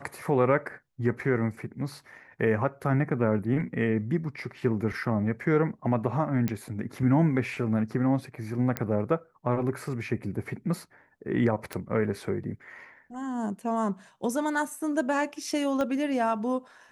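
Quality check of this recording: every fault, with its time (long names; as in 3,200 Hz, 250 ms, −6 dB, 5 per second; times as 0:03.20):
0:06.48: click −16 dBFS
0:08.77: click −12 dBFS
0:11.73: click −17 dBFS
0:15.81: click −18 dBFS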